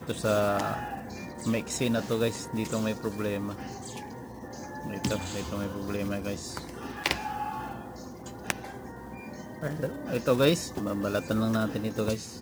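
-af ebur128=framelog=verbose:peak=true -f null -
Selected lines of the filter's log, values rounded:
Integrated loudness:
  I:         -30.8 LUFS
  Threshold: -41.4 LUFS
Loudness range:
  LRA:         5.9 LU
  Threshold: -52.3 LUFS
  LRA low:   -35.2 LUFS
  LRA high:  -29.4 LUFS
True peak:
  Peak:       -5.3 dBFS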